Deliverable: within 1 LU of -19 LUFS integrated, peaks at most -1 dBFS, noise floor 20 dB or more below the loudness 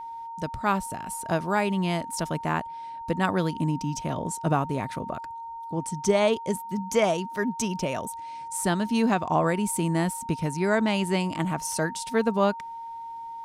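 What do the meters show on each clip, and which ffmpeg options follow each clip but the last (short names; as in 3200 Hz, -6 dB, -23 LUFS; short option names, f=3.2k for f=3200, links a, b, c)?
steady tone 920 Hz; tone level -35 dBFS; loudness -27.0 LUFS; peak -9.0 dBFS; loudness target -19.0 LUFS
-> -af "bandreject=f=920:w=30"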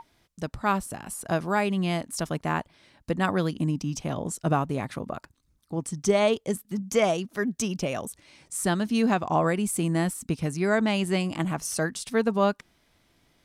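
steady tone none; loudness -27.0 LUFS; peak -9.5 dBFS; loudness target -19.0 LUFS
-> -af "volume=8dB"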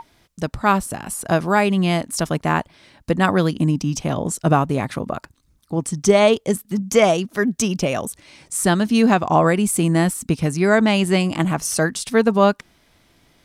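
loudness -19.0 LUFS; peak -1.5 dBFS; noise floor -60 dBFS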